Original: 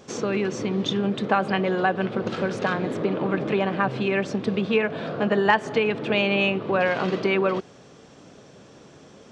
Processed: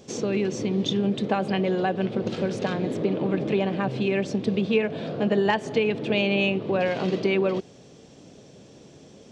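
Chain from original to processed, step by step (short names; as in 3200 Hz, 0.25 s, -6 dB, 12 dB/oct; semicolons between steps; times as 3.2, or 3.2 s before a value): bell 1300 Hz -11 dB 1.3 oct; gain +1 dB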